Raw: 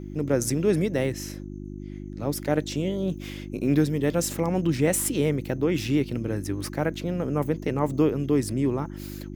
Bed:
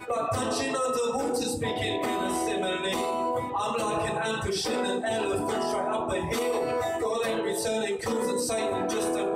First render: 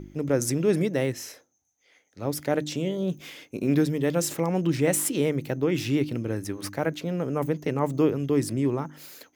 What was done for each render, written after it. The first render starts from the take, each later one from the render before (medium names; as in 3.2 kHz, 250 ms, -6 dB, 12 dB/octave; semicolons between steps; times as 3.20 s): de-hum 50 Hz, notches 7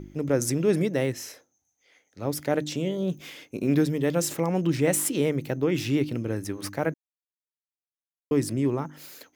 6.94–8.31 s: mute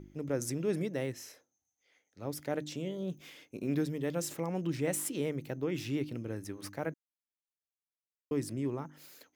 trim -9.5 dB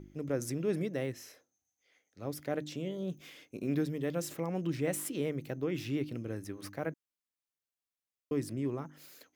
dynamic bell 7.6 kHz, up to -4 dB, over -56 dBFS, Q 0.88; band-stop 890 Hz, Q 12